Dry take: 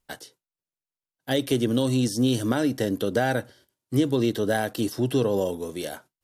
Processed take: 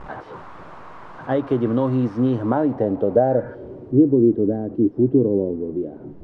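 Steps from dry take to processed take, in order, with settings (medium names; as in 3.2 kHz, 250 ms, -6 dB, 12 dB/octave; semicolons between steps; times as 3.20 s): one-bit delta coder 64 kbps, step -31 dBFS; spectral replace 3.32–3.52 s, 920–2500 Hz before; low-pass sweep 1.1 kHz -> 340 Hz, 2.25–4.19 s; trim +2.5 dB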